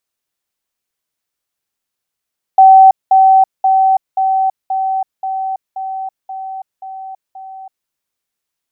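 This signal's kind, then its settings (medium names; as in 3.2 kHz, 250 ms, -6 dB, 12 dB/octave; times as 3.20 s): level ladder 766 Hz -1.5 dBFS, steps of -3 dB, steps 10, 0.33 s 0.20 s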